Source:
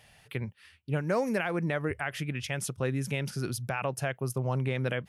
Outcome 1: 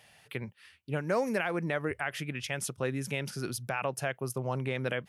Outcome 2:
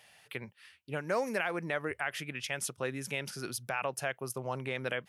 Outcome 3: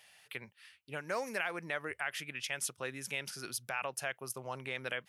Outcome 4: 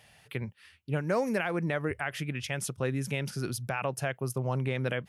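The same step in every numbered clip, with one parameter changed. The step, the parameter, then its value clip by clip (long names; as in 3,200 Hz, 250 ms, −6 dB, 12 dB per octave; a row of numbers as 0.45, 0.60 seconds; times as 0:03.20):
high-pass filter, corner frequency: 200, 540, 1,400, 69 Hertz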